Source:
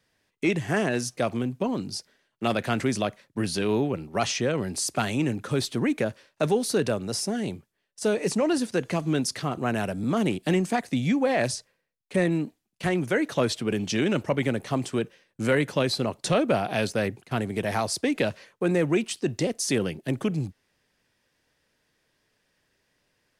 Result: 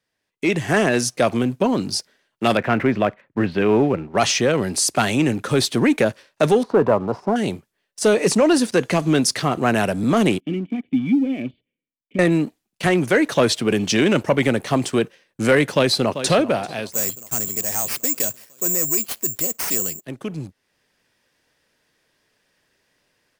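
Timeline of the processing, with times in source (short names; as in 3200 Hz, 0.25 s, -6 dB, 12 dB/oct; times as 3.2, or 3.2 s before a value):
2.57–4.18 LPF 2500 Hz 24 dB/oct
6.63–7.36 synth low-pass 1000 Hz, resonance Q 4.3
10.4–12.19 vocal tract filter i
15.72–16.32 echo throw 0.39 s, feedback 70%, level -11.5 dB
16.92–20.05 careless resampling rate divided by 6×, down none, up zero stuff
whole clip: low shelf 170 Hz -6 dB; AGC gain up to 11.5 dB; sample leveller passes 1; gain -4.5 dB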